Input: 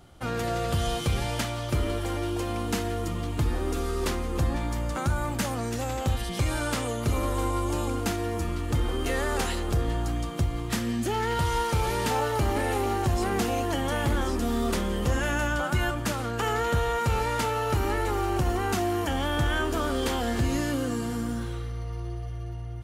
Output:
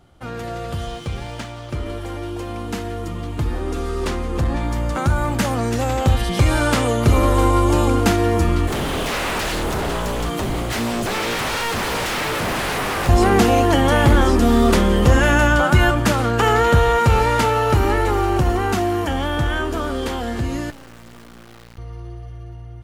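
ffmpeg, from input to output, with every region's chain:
ffmpeg -i in.wav -filter_complex "[0:a]asettb=1/sr,asplit=3[link_01][link_02][link_03];[link_01]atrim=end=0.854[link_04];[link_02]atrim=start=0.85:end=1.86,asetpts=PTS-STARTPTS,afade=type=in:duration=0.004:curve=qsin,afade=type=out:start_time=1.006:duration=0.004:curve=qsin,lowpass=9200,aeval=exprs='sgn(val(0))*max(abs(val(0))-0.00668,0)':channel_layout=same[link_05];[link_03]atrim=start=1.856[link_06];[link_04][link_05]acrossfade=duration=0.004:curve1=hsin:curve2=qsin[link_07];[link_07][link_06]acrossfade=duration=0.004:curve1=qsin:curve2=hsin,asettb=1/sr,asplit=3[link_08][link_09][link_10];[link_08]atrim=end=3.604[link_11];[link_09]atrim=start=3.6:end=4.63,asetpts=PTS-STARTPTS,afade=type=in:duration=0.004:curve=qsin,afade=type=out:start_time=1.026:duration=0.004:curve=qsin,lowpass=12000,asoftclip=type=hard:threshold=-21dB[link_12];[link_10]atrim=start=4.626[link_13];[link_11][link_12]acrossfade=duration=0.004:curve1=hsin:curve2=qsin[link_14];[link_14][link_13]acrossfade=duration=0.004:curve1=qsin:curve2=hsin,asettb=1/sr,asplit=3[link_15][link_16][link_17];[link_15]atrim=end=8.674[link_18];[link_16]atrim=start=8.67:end=13.09,asetpts=PTS-STARTPTS,afade=type=in:duration=0.004:curve=qsin,afade=type=out:start_time=4.416:duration=0.004:curve=qsin,aemphasis=mode=production:type=cd,acrossover=split=4400[link_19][link_20];[link_20]acompressor=threshold=-40dB:ratio=4:attack=1:release=60[link_21];[link_19][link_21]amix=inputs=2:normalize=0,aeval=exprs='0.0335*(abs(mod(val(0)/0.0335+3,4)-2)-1)':channel_layout=same[link_22];[link_17]atrim=start=13.086[link_23];[link_18][link_22]acrossfade=duration=0.004:curve1=hsin:curve2=qsin[link_24];[link_24][link_23]acrossfade=duration=0.004:curve1=qsin:curve2=hsin,asettb=1/sr,asplit=3[link_25][link_26][link_27];[link_25]atrim=end=20.704[link_28];[link_26]atrim=start=20.7:end=21.78,asetpts=PTS-STARTPTS,afade=type=in:duration=0.004:curve=qsin,afade=type=out:start_time=1.076:duration=0.004:curve=qsin,acrossover=split=95|1400[link_29][link_30][link_31];[link_29]acompressor=threshold=-48dB:ratio=4[link_32];[link_30]acompressor=threshold=-42dB:ratio=4[link_33];[link_31]acompressor=threshold=-45dB:ratio=4[link_34];[link_32][link_33][link_34]amix=inputs=3:normalize=0,aemphasis=mode=reproduction:type=50kf,acrusher=bits=4:dc=4:mix=0:aa=0.000001[link_35];[link_27]atrim=start=21.776[link_36];[link_28][link_35]acrossfade=duration=0.004:curve1=hsin:curve2=qsin[link_37];[link_37][link_36]acrossfade=duration=0.004:curve1=qsin:curve2=hsin,highshelf=frequency=4600:gain=-6,dynaudnorm=framelen=330:gausssize=31:maxgain=13dB" out.wav

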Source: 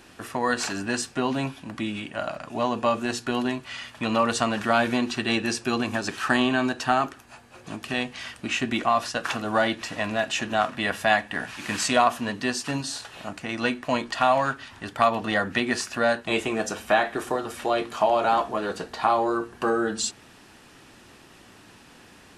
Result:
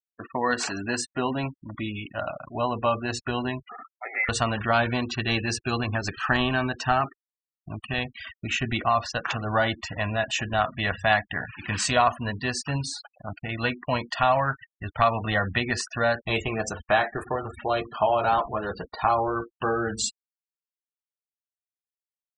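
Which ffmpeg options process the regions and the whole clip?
ffmpeg -i in.wav -filter_complex "[0:a]asettb=1/sr,asplit=3[link_01][link_02][link_03];[link_01]atrim=end=3.694[link_04];[link_02]atrim=start=3.69:end=4.29,asetpts=PTS-STARTPTS,afade=type=in:duration=0.004:curve=qsin,afade=type=out:start_time=0.596:duration=0.004:curve=qsin,highpass=frequency=990:width=0.5412,highpass=frequency=990:width=1.3066,lowpass=frequency=2700:width_type=q:width=0.5098,lowpass=frequency=2700:width_type=q:width=0.6013,lowpass=frequency=2700:width_type=q:width=0.9,lowpass=frequency=2700:width_type=q:width=2.563,afreqshift=-3200[link_05];[link_03]atrim=start=4.286[link_06];[link_04][link_05]acrossfade=duration=0.004:curve1=hsin:curve2=qsin[link_07];[link_07][link_06]acrossfade=duration=0.004:curve1=qsin:curve2=hsin,anlmdn=0.398,afftfilt=real='re*gte(hypot(re,im),0.0251)':imag='im*gte(hypot(re,im),0.0251)':win_size=1024:overlap=0.75,asubboost=boost=10:cutoff=80" out.wav

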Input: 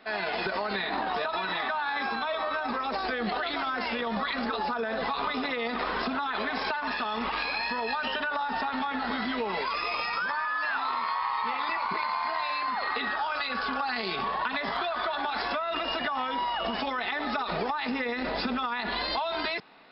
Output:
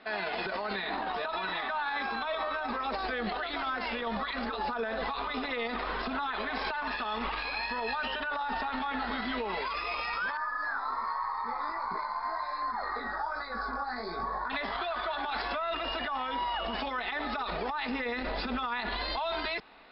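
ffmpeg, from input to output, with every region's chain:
ffmpeg -i in.wav -filter_complex "[0:a]asettb=1/sr,asplit=3[link_01][link_02][link_03];[link_01]atrim=end=10.374[link_04];[link_02]atrim=start=10.37:end=14.5,asetpts=PTS-STARTPTS,afade=type=in:duration=0.004:curve=qsin,afade=type=out:start_time=4.126:duration=0.004:curve=qsin,flanger=delay=17:depth=4.2:speed=1.3,asuperstop=centerf=2900:order=4:qfactor=1[link_05];[link_03]atrim=start=14.496[link_06];[link_04][link_05]acrossfade=duration=0.004:curve1=hsin:curve2=qsin[link_07];[link_07][link_06]acrossfade=duration=0.004:curve1=qsin:curve2=hsin,lowpass=frequency=4900:width=0.5412,lowpass=frequency=4900:width=1.3066,asubboost=boost=5.5:cutoff=54,alimiter=limit=-24dB:level=0:latency=1:release=105" out.wav

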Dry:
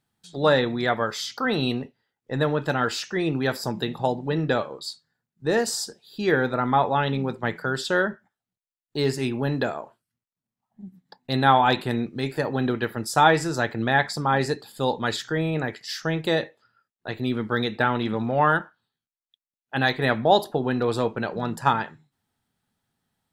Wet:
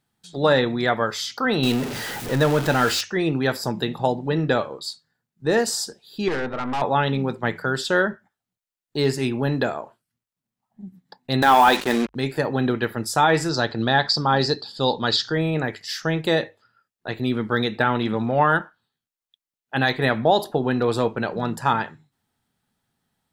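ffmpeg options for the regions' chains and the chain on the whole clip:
ffmpeg -i in.wav -filter_complex "[0:a]asettb=1/sr,asplit=3[link_01][link_02][link_03];[link_01]atrim=end=1.634[link_04];[link_02]atrim=start=1.63:end=3.01,asetpts=PTS-STARTPTS,afade=type=in:duration=0.004:curve=qsin,afade=type=out:start_time=1.376:duration=0.004:curve=qsin,aeval=exprs='val(0)+0.5*0.0473*sgn(val(0))':channel_layout=same,bandreject=frequency=1100:width=22[link_05];[link_03]atrim=start=3.006[link_06];[link_04][link_05]acrossfade=duration=0.004:curve1=hsin:curve2=qsin[link_07];[link_07][link_06]acrossfade=duration=0.004:curve1=qsin:curve2=hsin,asettb=1/sr,asplit=3[link_08][link_09][link_10];[link_08]atrim=end=6.284[link_11];[link_09]atrim=start=6.28:end=6.82,asetpts=PTS-STARTPTS,afade=type=in:duration=0.004:curve=qsin,afade=type=out:start_time=0.536:duration=0.004:curve=qsin,lowpass=2200,aeval=exprs='(tanh(17.8*val(0)+0.5)-tanh(0.5))/17.8':channel_layout=same[link_12];[link_10]atrim=start=6.816[link_13];[link_11][link_12]acrossfade=duration=0.004:curve1=hsin:curve2=qsin[link_14];[link_14][link_13]acrossfade=duration=0.004:curve1=qsin:curve2=hsin,asettb=1/sr,asplit=3[link_15][link_16][link_17];[link_15]atrim=end=11.424[link_18];[link_16]atrim=start=11.42:end=12.15,asetpts=PTS-STARTPTS,afade=type=in:duration=0.004:curve=qsin,afade=type=out:start_time=0.726:duration=0.004:curve=qsin,lowshelf=frequency=160:width_type=q:width=1.5:gain=-8.5,asplit=2[link_19][link_20];[link_20]highpass=frequency=720:poles=1,volume=13dB,asoftclip=type=tanh:threshold=-4.5dB[link_21];[link_19][link_21]amix=inputs=2:normalize=0,lowpass=frequency=3000:poles=1,volume=-6dB,acrusher=bits=4:mix=0:aa=0.5[link_22];[link_17]atrim=start=12.146[link_23];[link_18][link_22]acrossfade=duration=0.004:curve1=hsin:curve2=qsin[link_24];[link_24][link_23]acrossfade=duration=0.004:curve1=qsin:curve2=hsin,asettb=1/sr,asplit=3[link_25][link_26][link_27];[link_25]atrim=end=13.494[link_28];[link_26]atrim=start=13.49:end=15.35,asetpts=PTS-STARTPTS,afade=type=in:duration=0.004:curve=qsin,afade=type=out:start_time=1.856:duration=0.004:curve=qsin,lowpass=frequency=4700:width_type=q:width=4,equalizer=frequency=2200:width=3:gain=-10[link_29];[link_27]atrim=start=15.346[link_30];[link_28][link_29]acrossfade=duration=0.004:curve1=hsin:curve2=qsin[link_31];[link_31][link_30]acrossfade=duration=0.004:curve1=qsin:curve2=hsin,bandreject=frequency=50:width_type=h:width=6,bandreject=frequency=100:width_type=h:width=6,alimiter=level_in=8.5dB:limit=-1dB:release=50:level=0:latency=1,volume=-6dB" out.wav

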